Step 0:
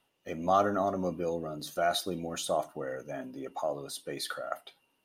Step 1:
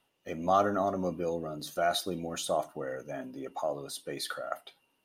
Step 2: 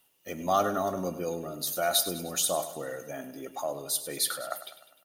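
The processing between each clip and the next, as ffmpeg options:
ffmpeg -i in.wav -af anull out.wav
ffmpeg -i in.wav -af "aemphasis=mode=production:type=75fm,aecho=1:1:101|202|303|404|505|606:0.224|0.121|0.0653|0.0353|0.019|0.0103" out.wav

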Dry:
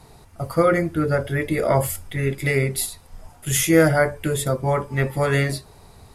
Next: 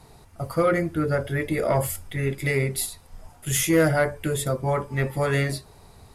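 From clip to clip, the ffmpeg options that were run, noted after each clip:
ffmpeg -i in.wav -af "acontrast=53,volume=-8.5dB" out.wav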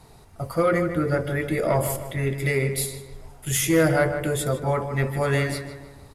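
ffmpeg -i in.wav -filter_complex "[0:a]asplit=2[link_01][link_02];[link_02]adelay=154,lowpass=frequency=2700:poles=1,volume=-8.5dB,asplit=2[link_03][link_04];[link_04]adelay=154,lowpass=frequency=2700:poles=1,volume=0.48,asplit=2[link_05][link_06];[link_06]adelay=154,lowpass=frequency=2700:poles=1,volume=0.48,asplit=2[link_07][link_08];[link_08]adelay=154,lowpass=frequency=2700:poles=1,volume=0.48,asplit=2[link_09][link_10];[link_10]adelay=154,lowpass=frequency=2700:poles=1,volume=0.48[link_11];[link_01][link_03][link_05][link_07][link_09][link_11]amix=inputs=6:normalize=0" out.wav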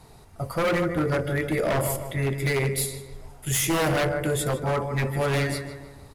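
ffmpeg -i in.wav -af "aeval=exprs='0.126*(abs(mod(val(0)/0.126+3,4)-2)-1)':channel_layout=same" out.wav

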